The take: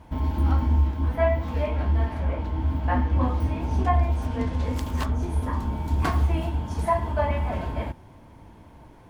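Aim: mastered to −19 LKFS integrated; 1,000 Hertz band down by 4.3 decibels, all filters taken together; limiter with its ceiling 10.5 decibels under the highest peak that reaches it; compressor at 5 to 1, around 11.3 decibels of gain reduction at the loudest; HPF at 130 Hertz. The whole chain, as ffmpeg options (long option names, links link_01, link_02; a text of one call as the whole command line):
ffmpeg -i in.wav -af "highpass=130,equalizer=frequency=1000:width_type=o:gain=-5.5,acompressor=threshold=-34dB:ratio=5,volume=24.5dB,alimiter=limit=-10dB:level=0:latency=1" out.wav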